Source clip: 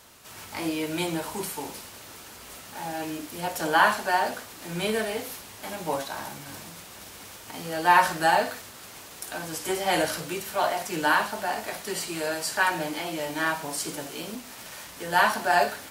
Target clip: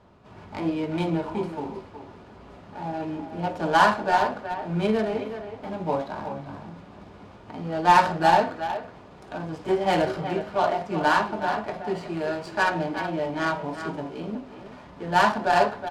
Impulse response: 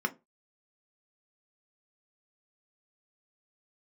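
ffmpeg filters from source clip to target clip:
-filter_complex "[0:a]adynamicsmooth=sensitivity=1.5:basefreq=1.4k,asplit=2[a][b];[b]adelay=370,highpass=300,lowpass=3.4k,asoftclip=type=hard:threshold=-17dB,volume=-9dB[c];[a][c]amix=inputs=2:normalize=0,asplit=2[d][e];[1:a]atrim=start_sample=2205[f];[e][f]afir=irnorm=-1:irlink=0,volume=-13.5dB[g];[d][g]amix=inputs=2:normalize=0,volume=3.5dB"

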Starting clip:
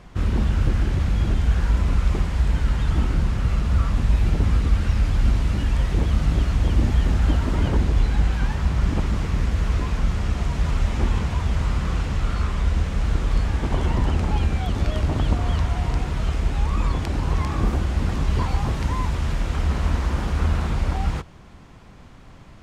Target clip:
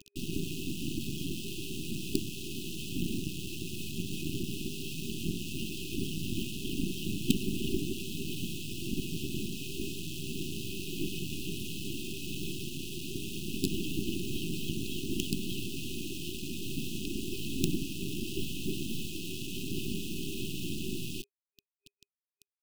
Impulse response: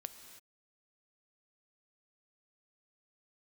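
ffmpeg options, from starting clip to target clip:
-af "highpass=f=230:t=q:w=0.5412,highpass=f=230:t=q:w=1.307,lowpass=f=3.4k:t=q:w=0.5176,lowpass=f=3.4k:t=q:w=0.7071,lowpass=f=3.4k:t=q:w=1.932,afreqshift=-53,bandreject=f=50:t=h:w=6,bandreject=f=100:t=h:w=6,bandreject=f=150:t=h:w=6,bandreject=f=200:t=h:w=6,bandreject=f=250:t=h:w=6,aphaser=in_gain=1:out_gain=1:delay=2.9:decay=0.23:speed=0.96:type=sinusoidal,acrusher=bits=4:dc=4:mix=0:aa=0.000001,afftfilt=real='re*(1-between(b*sr/4096,400,2500))':imag='im*(1-between(b*sr/4096,400,2500))':win_size=4096:overlap=0.75,volume=3.5dB"

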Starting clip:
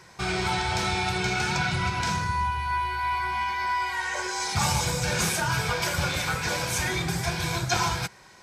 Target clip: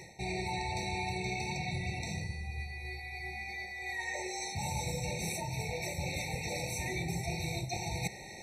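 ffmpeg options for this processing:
-af "areverse,acompressor=threshold=-39dB:ratio=12,areverse,afftfilt=real='re*eq(mod(floor(b*sr/1024/910),2),0)':imag='im*eq(mod(floor(b*sr/1024/910),2),0)':win_size=1024:overlap=0.75,volume=7.5dB"

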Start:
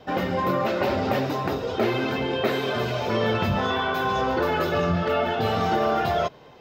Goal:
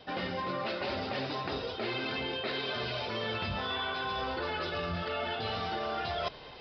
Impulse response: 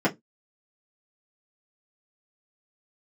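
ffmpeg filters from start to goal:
-af "crystalizer=i=5.5:c=0,areverse,acompressor=threshold=-31dB:ratio=5,areverse,asubboost=boost=3.5:cutoff=71,aresample=11025,aresample=44100,volume=-1.5dB"

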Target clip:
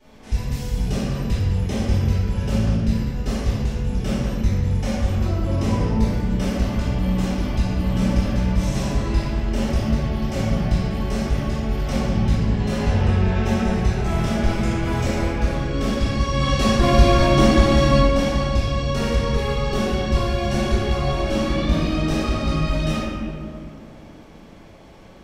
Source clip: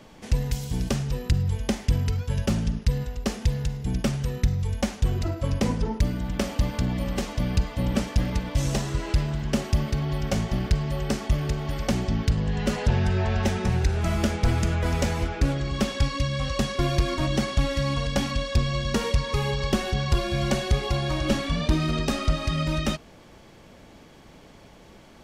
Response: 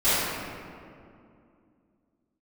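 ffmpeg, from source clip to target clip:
-filter_complex "[0:a]asettb=1/sr,asplit=3[a][b][c];[a]atrim=end=16.274[d];[b]atrim=start=16.27:end=17.96,asetpts=PTS-STARTPTS,afade=t=in:d=0.004:c=qsin,afade=t=out:st=1.686:d=0.004:c=qsin,acontrast=67[e];[c]atrim=start=17.956[f];[d][e]acrossfade=d=0.004:c1=hsin:c2=qsin[g];[g][f]acrossfade=d=0.004:c1=qsin:c2=hsin[h];[1:a]atrim=start_sample=2205,asetrate=48510,aresample=44100[i];[h][i]afir=irnorm=-1:irlink=0,volume=-14dB"

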